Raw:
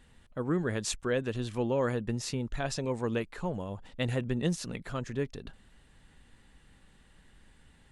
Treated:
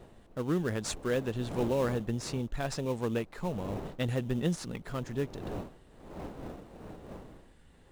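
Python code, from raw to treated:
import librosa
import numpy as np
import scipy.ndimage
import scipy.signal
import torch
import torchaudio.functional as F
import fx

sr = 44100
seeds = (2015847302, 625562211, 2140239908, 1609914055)

p1 = fx.dmg_wind(x, sr, seeds[0], corner_hz=500.0, level_db=-45.0)
p2 = fx.sample_hold(p1, sr, seeds[1], rate_hz=3300.0, jitter_pct=20)
p3 = p1 + F.gain(torch.from_numpy(p2), -8.5).numpy()
y = F.gain(torch.from_numpy(p3), -3.0).numpy()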